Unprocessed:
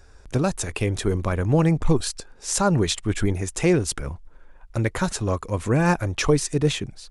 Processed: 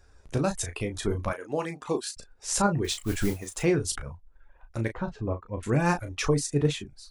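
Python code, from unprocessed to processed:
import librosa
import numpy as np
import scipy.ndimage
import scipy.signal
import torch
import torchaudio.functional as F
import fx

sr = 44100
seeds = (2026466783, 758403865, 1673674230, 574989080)

y = fx.highpass(x, sr, hz=340.0, slope=12, at=(1.29, 2.17))
y = fx.dereverb_blind(y, sr, rt60_s=0.81)
y = fx.tremolo_shape(y, sr, shape='saw_up', hz=1.5, depth_pct=45)
y = fx.mod_noise(y, sr, seeds[0], snr_db=18, at=(2.84, 3.63))
y = fx.spacing_loss(y, sr, db_at_10k=43, at=(4.92, 5.63))
y = fx.room_early_taps(y, sr, ms=(14, 35), db=(-10.5, -8.5))
y = F.gain(torch.from_numpy(y), -3.0).numpy()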